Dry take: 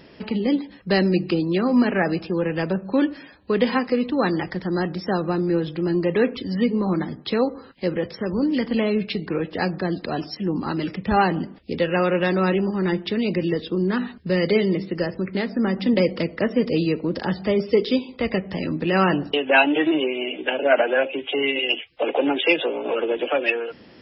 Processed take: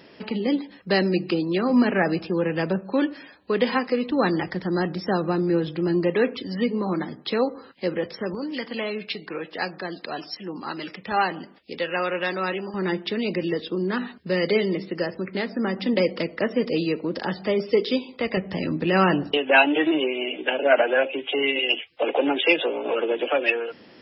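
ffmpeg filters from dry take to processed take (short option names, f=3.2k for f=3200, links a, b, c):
-af "asetnsamples=n=441:p=0,asendcmd='1.7 highpass f 110;2.81 highpass f 290;4.11 highpass f 96;6.1 highpass f 280;8.35 highpass f 860;12.74 highpass f 300;18.37 highpass f 79;19.37 highpass f 210',highpass=f=240:p=1"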